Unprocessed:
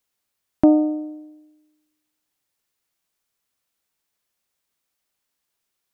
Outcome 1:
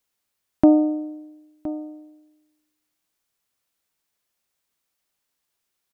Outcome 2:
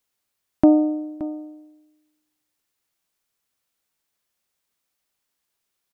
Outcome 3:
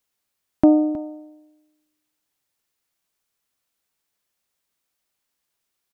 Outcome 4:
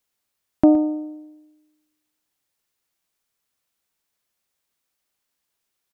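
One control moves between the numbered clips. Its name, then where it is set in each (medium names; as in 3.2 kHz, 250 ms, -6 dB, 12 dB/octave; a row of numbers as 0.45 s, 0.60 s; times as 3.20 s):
delay, time: 1017 ms, 573 ms, 316 ms, 117 ms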